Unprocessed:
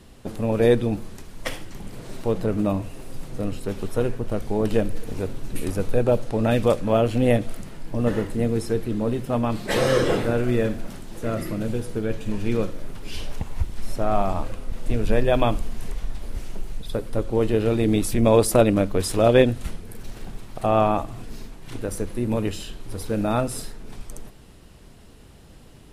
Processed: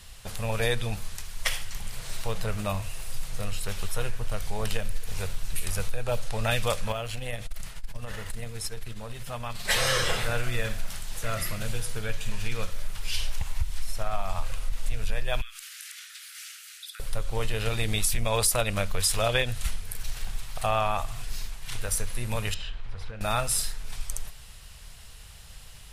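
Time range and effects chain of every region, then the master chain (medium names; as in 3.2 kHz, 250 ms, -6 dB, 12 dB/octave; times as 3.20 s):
6.92–9.65 s: compression 2:1, threshold -30 dBFS + transformer saturation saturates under 80 Hz
15.41–17.00 s: steep high-pass 1.3 kHz 72 dB/octave + compression 12:1, threshold -44 dBFS
22.54–23.21 s: low-pass 2.4 kHz + compression 3:1, threshold -32 dBFS
whole clip: amplifier tone stack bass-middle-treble 10-0-10; compression, threshold -29 dBFS; trim +9 dB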